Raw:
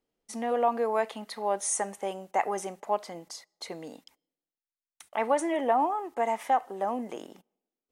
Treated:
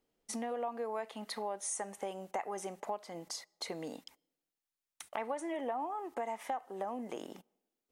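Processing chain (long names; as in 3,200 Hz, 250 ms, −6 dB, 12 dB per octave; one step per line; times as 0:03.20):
downward compressor 4 to 1, threshold −39 dBFS, peak gain reduction 16 dB
level +2 dB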